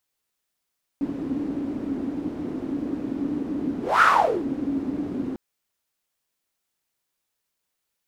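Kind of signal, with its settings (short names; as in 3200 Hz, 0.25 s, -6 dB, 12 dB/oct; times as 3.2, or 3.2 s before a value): whoosh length 4.35 s, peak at 3.01, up 0.23 s, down 0.47 s, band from 280 Hz, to 1400 Hz, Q 8.8, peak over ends 12.5 dB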